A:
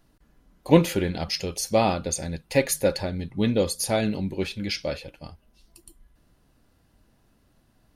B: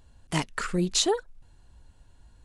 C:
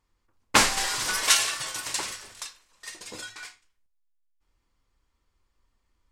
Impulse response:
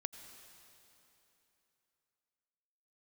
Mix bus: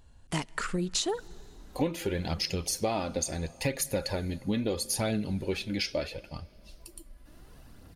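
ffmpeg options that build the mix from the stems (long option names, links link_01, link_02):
-filter_complex "[0:a]aphaser=in_gain=1:out_gain=1:delay=4.1:decay=0.4:speed=0.74:type=triangular,acompressor=mode=upward:threshold=-39dB:ratio=2.5,adelay=1100,volume=-2.5dB,asplit=2[link_01][link_02];[link_02]volume=-12.5dB[link_03];[1:a]volume=-2dB,asplit=2[link_04][link_05];[link_05]volume=-16dB[link_06];[3:a]atrim=start_sample=2205[link_07];[link_03][link_06]amix=inputs=2:normalize=0[link_08];[link_08][link_07]afir=irnorm=-1:irlink=0[link_09];[link_01][link_04][link_09]amix=inputs=3:normalize=0,acompressor=threshold=-26dB:ratio=6"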